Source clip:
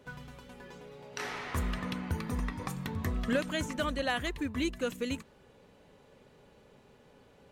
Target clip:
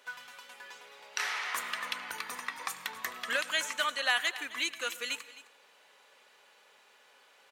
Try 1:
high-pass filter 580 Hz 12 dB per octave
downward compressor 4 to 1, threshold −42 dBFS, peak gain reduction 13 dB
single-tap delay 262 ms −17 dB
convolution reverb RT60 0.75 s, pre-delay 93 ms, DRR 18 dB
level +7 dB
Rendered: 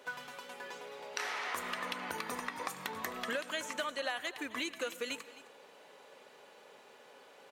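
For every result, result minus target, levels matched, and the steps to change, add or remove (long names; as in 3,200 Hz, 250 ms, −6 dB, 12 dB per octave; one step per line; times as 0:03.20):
downward compressor: peak gain reduction +13 dB; 500 Hz band +8.0 dB
remove: downward compressor 4 to 1, threshold −42 dBFS, peak gain reduction 13 dB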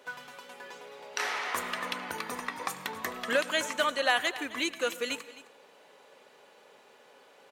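500 Hz band +8.5 dB
change: high-pass filter 1,200 Hz 12 dB per octave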